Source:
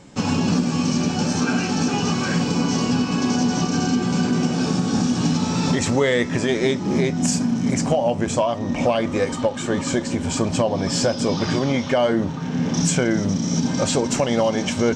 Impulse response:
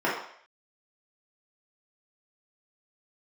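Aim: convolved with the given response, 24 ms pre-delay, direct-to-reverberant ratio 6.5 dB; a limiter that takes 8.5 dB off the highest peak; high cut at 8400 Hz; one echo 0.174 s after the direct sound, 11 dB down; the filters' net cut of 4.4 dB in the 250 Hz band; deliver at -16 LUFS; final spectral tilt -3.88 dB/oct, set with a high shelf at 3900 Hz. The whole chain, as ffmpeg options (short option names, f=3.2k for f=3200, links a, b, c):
-filter_complex "[0:a]lowpass=8.4k,equalizer=f=250:t=o:g=-5.5,highshelf=f=3.9k:g=8.5,alimiter=limit=-14dB:level=0:latency=1,aecho=1:1:174:0.282,asplit=2[a][b];[1:a]atrim=start_sample=2205,adelay=24[c];[b][c]afir=irnorm=-1:irlink=0,volume=-21.5dB[d];[a][d]amix=inputs=2:normalize=0,volume=6.5dB"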